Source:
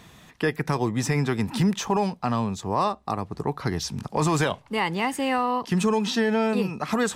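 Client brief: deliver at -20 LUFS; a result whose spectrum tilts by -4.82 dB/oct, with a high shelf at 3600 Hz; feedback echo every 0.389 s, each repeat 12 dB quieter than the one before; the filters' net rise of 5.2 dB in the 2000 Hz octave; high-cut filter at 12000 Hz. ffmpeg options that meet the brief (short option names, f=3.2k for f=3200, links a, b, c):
-af "lowpass=12k,equalizer=f=2k:t=o:g=8.5,highshelf=f=3.6k:g=-9,aecho=1:1:389|778|1167:0.251|0.0628|0.0157,volume=4.5dB"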